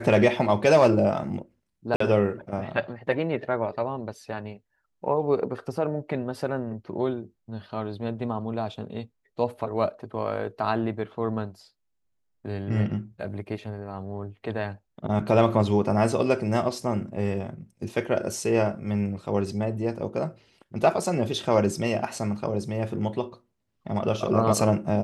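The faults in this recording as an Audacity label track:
1.960000	2.000000	gap 44 ms

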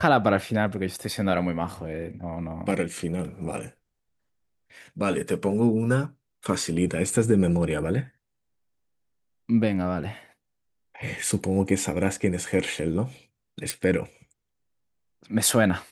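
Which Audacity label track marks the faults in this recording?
13.700000	13.700000	pop

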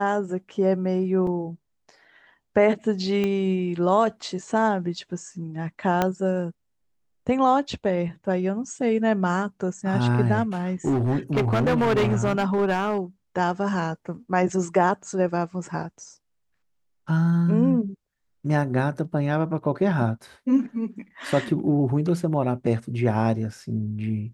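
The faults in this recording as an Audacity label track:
1.270000	1.270000	gap 3.1 ms
3.240000	3.240000	pop -14 dBFS
6.020000	6.020000	pop -8 dBFS
10.860000	12.980000	clipped -17.5 dBFS

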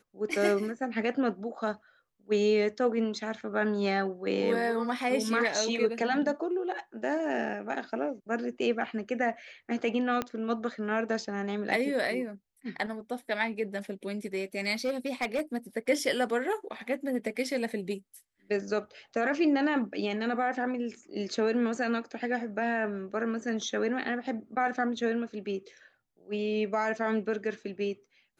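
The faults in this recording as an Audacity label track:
10.220000	10.220000	pop -16 dBFS
14.850000	15.580000	clipped -24.5 dBFS

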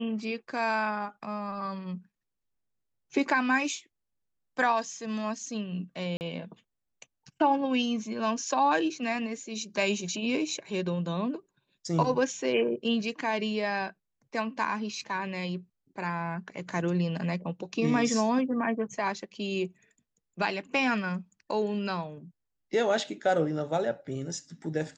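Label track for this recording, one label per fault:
6.170000	6.210000	gap 39 ms

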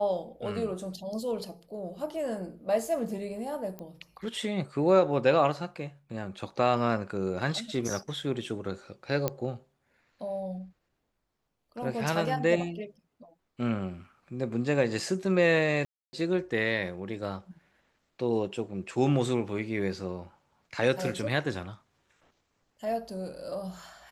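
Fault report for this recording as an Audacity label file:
3.790000	3.790000	pop -25 dBFS
9.280000	9.280000	pop -13 dBFS
15.850000	16.130000	gap 0.28 s

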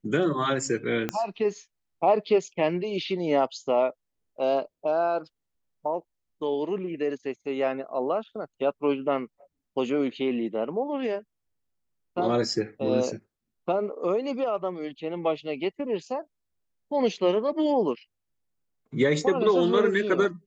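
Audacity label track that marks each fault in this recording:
1.090000	1.090000	pop -13 dBFS

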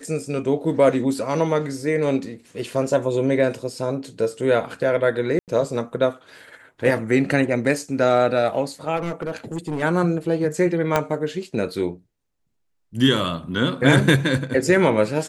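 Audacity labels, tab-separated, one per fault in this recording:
5.390000	5.480000	gap 88 ms
8.960000	9.830000	clipped -22 dBFS
10.960000	10.960000	pop -5 dBFS

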